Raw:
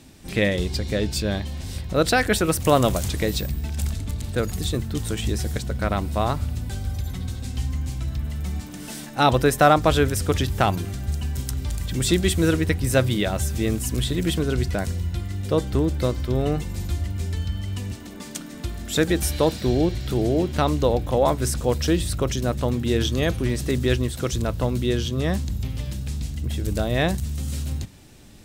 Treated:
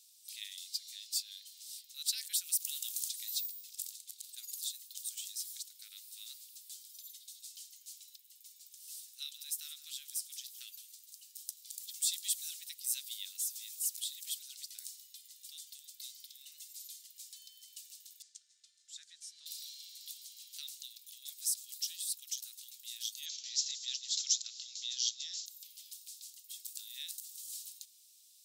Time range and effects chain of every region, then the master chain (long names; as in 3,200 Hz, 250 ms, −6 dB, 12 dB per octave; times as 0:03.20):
0:08.16–0:11.66: flanger 1.2 Hz, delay 6.2 ms, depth 6.1 ms, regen +72% + single-tap delay 167 ms −15 dB
0:18.22–0:19.46: low-pass filter 7,400 Hz 24 dB per octave + high shelf with overshoot 2,000 Hz −10 dB, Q 1.5
0:23.26–0:25.46: Chebyshev low-pass filter 7,500 Hz, order 10 + parametric band 5,200 Hz +7.5 dB 1.1 octaves + envelope flattener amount 70%
whole clip: inverse Chebyshev high-pass filter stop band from 870 Hz, stop band 70 dB; high-shelf EQ 12,000 Hz +10.5 dB; level −7 dB